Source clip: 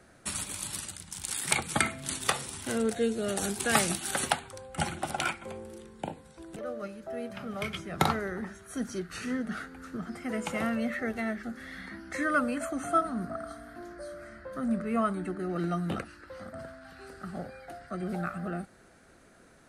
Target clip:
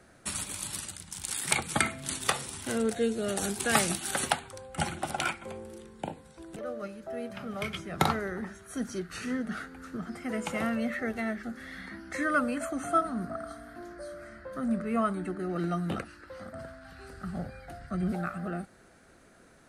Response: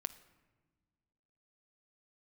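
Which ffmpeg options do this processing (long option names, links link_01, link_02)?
-filter_complex "[0:a]asettb=1/sr,asplit=3[link_01][link_02][link_03];[link_01]atrim=end=16.474[link_04];[link_02]atrim=start=16.47:end=18.12,asetpts=PTS-STARTPTS,afade=type=in:duration=0.004:curve=qsin,afade=type=out:start_time=1.646:duration=0.004:curve=qsin,asubboost=boost=8:cutoff=190[link_05];[link_03]atrim=start=18.116[link_06];[link_04][link_05]acrossfade=duration=0.004:curve1=hsin:curve2=qsin[link_07];[link_07][link_06]acrossfade=duration=0.004:curve1=qsin:curve2=hsin"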